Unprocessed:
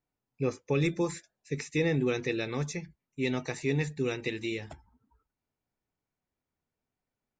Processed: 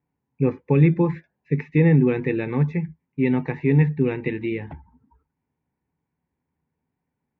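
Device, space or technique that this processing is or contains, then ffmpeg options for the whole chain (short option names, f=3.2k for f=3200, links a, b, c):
bass cabinet: -af "highpass=62,equalizer=f=71:t=q:w=4:g=8,equalizer=f=160:t=q:w=4:g=9,equalizer=f=260:t=q:w=4:g=4,equalizer=f=640:t=q:w=4:g=-8,equalizer=f=920:t=q:w=4:g=5,equalizer=f=1.3k:t=q:w=4:g=-9,lowpass=f=2.2k:w=0.5412,lowpass=f=2.2k:w=1.3066,volume=7.5dB"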